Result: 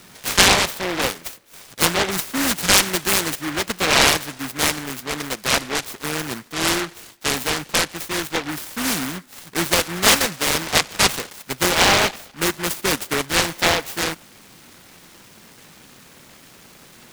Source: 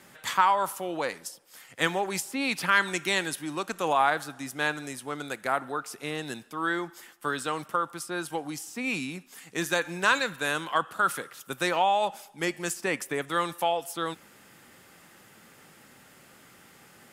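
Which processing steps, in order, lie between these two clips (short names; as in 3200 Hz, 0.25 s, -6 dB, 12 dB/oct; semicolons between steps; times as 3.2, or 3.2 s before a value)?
noise-modulated delay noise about 1400 Hz, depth 0.33 ms; gain +8 dB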